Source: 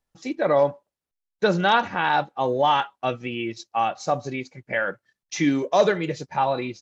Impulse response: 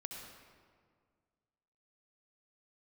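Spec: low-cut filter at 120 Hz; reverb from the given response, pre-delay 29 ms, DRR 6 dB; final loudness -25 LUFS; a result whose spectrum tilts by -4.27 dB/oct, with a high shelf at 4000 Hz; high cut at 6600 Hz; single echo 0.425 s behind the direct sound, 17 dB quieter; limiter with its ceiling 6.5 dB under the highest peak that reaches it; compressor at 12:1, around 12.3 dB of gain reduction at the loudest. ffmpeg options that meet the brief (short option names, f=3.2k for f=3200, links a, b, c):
-filter_complex "[0:a]highpass=120,lowpass=6.6k,highshelf=f=4k:g=-7.5,acompressor=threshold=-25dB:ratio=12,alimiter=limit=-21dB:level=0:latency=1,aecho=1:1:425:0.141,asplit=2[a][b];[1:a]atrim=start_sample=2205,adelay=29[c];[b][c]afir=irnorm=-1:irlink=0,volume=-4dB[d];[a][d]amix=inputs=2:normalize=0,volume=7dB"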